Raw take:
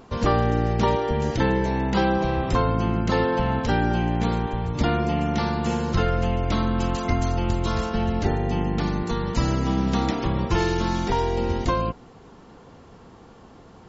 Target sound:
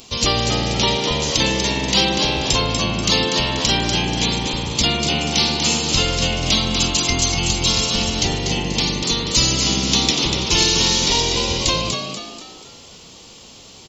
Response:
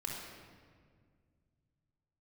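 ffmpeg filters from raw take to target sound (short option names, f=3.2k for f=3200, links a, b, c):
-filter_complex "[0:a]asplit=6[a][b][c][d][e][f];[b]adelay=242,afreqshift=82,volume=-6dB[g];[c]adelay=484,afreqshift=164,volume=-13.7dB[h];[d]adelay=726,afreqshift=246,volume=-21.5dB[i];[e]adelay=968,afreqshift=328,volume=-29.2dB[j];[f]adelay=1210,afreqshift=410,volume=-37dB[k];[a][g][h][i][j][k]amix=inputs=6:normalize=0,aexciter=amount=7.8:drive=7.6:freq=2.4k,asettb=1/sr,asplit=3[l][m][n];[l]atrim=end=0.744[o];[m]atrim=start=0.74:end=1.23,asetpts=PTS-STARTPTS,afade=t=in:d=0.004:c=qsin,afade=t=out:st=0.486:d=0.004:c=qsin,acrossover=split=6300[p][q];[q]acompressor=threshold=-39dB:ratio=4:attack=1:release=60[r];[p][r]amix=inputs=2:normalize=0[s];[n]atrim=start=1.226[t];[o][s]acrossfade=d=0.004:c1=hsin:c2=qsin[u];[u][t]acrossfade=d=0.004:c1=qsin:c2=hsin,volume=-1dB"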